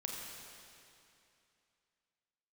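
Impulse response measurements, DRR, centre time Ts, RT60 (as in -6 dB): -1.0 dB, 124 ms, 2.7 s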